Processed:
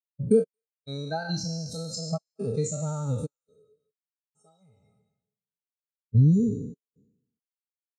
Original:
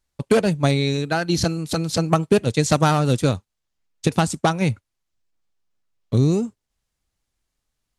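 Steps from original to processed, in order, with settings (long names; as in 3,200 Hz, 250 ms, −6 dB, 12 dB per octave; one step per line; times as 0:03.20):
peak hold with a decay on every bin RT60 2.02 s
bass and treble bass −1 dB, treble +14 dB
downward compressor 8 to 1, threshold −16 dBFS, peak gain reduction 10.5 dB
gate pattern "xx..xxxxxx.xxxx." 69 BPM −60 dB
notch comb filter 360 Hz
noise that follows the level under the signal 19 dB
0:03.30–0:06.15: tuned comb filter 420 Hz, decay 0.16 s, harmonics odd, mix 80%
feedback echo with a high-pass in the loop 227 ms, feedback 54%, high-pass 1,100 Hz, level −20 dB
every bin expanded away from the loudest bin 2.5 to 1
level −4 dB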